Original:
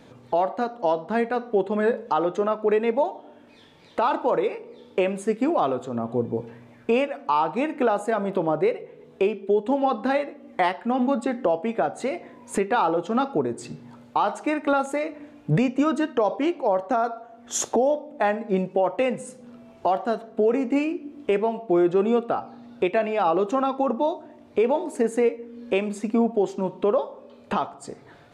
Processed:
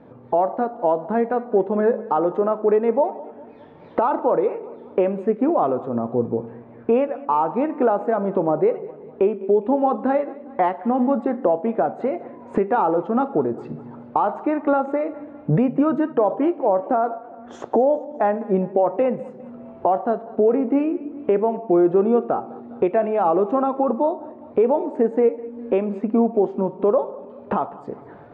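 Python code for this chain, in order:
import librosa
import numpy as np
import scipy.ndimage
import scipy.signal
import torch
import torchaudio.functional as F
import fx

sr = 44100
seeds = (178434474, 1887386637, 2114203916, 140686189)

p1 = fx.recorder_agc(x, sr, target_db=-15.5, rise_db_per_s=8.3, max_gain_db=30)
p2 = scipy.signal.sosfilt(scipy.signal.butter(2, 1100.0, 'lowpass', fs=sr, output='sos'), p1)
p3 = fx.low_shelf(p2, sr, hz=97.0, db=-7.0)
p4 = p3 + fx.echo_feedback(p3, sr, ms=204, feedback_pct=54, wet_db=-20.0, dry=0)
y = p4 * 10.0 ** (4.0 / 20.0)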